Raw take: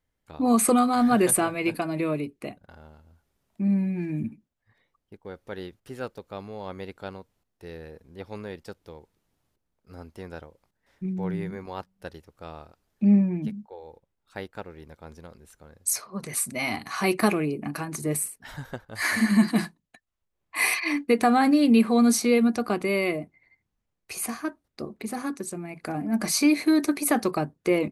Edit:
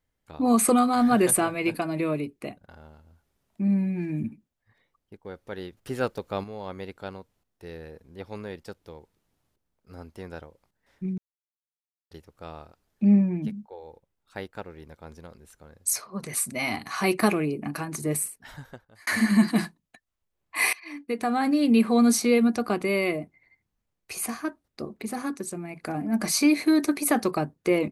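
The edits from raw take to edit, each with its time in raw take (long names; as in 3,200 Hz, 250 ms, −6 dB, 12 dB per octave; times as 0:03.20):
0:05.77–0:06.44: clip gain +7 dB
0:11.18–0:12.11: silence
0:18.25–0:19.07: fade out
0:20.73–0:21.93: fade in, from −22 dB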